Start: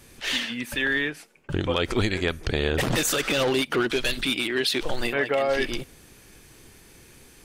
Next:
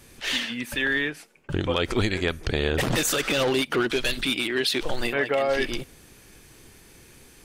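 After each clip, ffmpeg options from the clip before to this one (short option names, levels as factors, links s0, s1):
-af anull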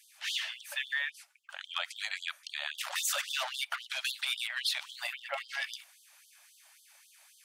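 -af "afftfilt=real='re*gte(b*sr/1024,550*pow(3100/550,0.5+0.5*sin(2*PI*3.7*pts/sr)))':imag='im*gte(b*sr/1024,550*pow(3100/550,0.5+0.5*sin(2*PI*3.7*pts/sr)))':win_size=1024:overlap=0.75,volume=0.501"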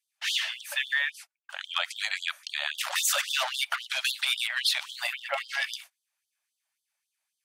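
-af "agate=range=0.0355:threshold=0.00282:ratio=16:detection=peak,volume=2"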